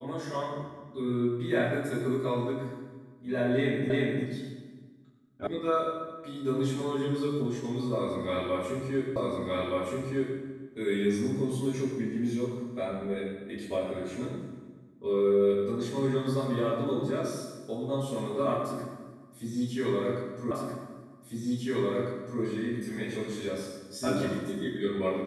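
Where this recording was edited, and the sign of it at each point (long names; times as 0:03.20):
0:03.90: the same again, the last 0.35 s
0:05.47: cut off before it has died away
0:09.16: the same again, the last 1.22 s
0:20.51: the same again, the last 1.9 s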